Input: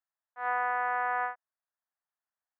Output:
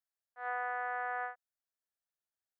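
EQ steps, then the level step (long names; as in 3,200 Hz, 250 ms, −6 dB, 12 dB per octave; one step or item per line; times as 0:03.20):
graphic EQ with 15 bands 250 Hz −10 dB, 1,000 Hz −9 dB, 2,500 Hz −7 dB
−2.0 dB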